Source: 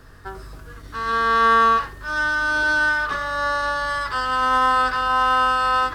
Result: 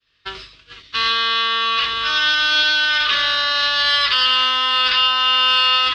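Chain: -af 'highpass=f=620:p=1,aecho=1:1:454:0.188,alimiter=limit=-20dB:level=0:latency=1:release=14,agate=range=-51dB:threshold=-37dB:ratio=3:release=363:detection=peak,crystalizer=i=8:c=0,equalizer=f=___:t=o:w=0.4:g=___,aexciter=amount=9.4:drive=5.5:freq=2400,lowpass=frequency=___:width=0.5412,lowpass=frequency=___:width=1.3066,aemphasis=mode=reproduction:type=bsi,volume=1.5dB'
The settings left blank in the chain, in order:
800, -8.5, 3200, 3200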